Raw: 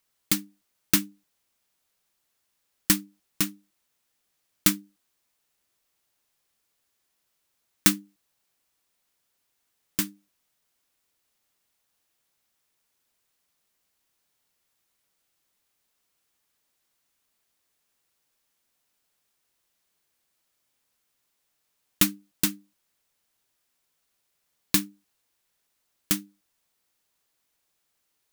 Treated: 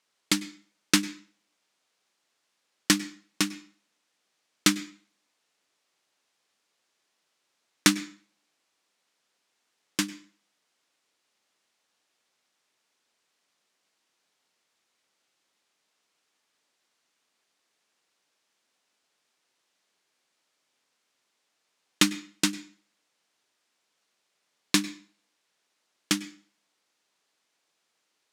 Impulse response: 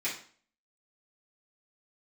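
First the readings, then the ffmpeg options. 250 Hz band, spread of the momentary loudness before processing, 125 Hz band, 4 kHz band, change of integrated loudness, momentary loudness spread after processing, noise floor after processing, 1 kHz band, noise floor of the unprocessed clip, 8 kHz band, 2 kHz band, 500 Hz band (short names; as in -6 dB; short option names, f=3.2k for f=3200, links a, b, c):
+2.0 dB, 11 LU, -1.0 dB, +3.5 dB, -1.0 dB, 18 LU, -77 dBFS, +4.0 dB, -76 dBFS, -1.0 dB, +4.0 dB, +3.5 dB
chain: -filter_complex "[0:a]highpass=220,lowpass=6.7k,asplit=2[a][b];[1:a]atrim=start_sample=2205,adelay=96[c];[b][c]afir=irnorm=-1:irlink=0,volume=-23dB[d];[a][d]amix=inputs=2:normalize=0,volume=4dB"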